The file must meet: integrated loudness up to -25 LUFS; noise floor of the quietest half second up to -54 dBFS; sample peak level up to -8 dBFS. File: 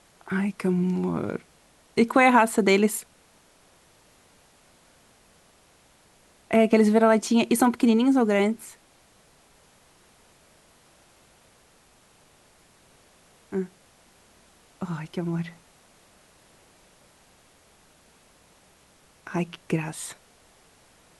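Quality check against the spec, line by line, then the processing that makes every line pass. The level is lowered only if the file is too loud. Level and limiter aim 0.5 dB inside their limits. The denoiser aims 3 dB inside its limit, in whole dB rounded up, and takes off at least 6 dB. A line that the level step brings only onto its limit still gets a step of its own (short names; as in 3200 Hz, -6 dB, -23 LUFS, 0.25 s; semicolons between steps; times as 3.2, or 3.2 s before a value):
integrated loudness -23.0 LUFS: fail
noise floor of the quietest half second -59 dBFS: OK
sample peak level -5.5 dBFS: fail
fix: gain -2.5 dB; limiter -8.5 dBFS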